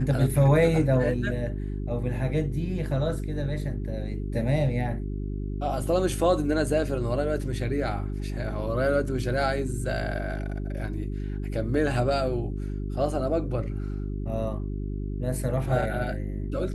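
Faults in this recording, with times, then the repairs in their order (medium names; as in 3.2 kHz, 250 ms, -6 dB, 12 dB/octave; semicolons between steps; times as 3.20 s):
hum 50 Hz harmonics 8 -31 dBFS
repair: de-hum 50 Hz, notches 8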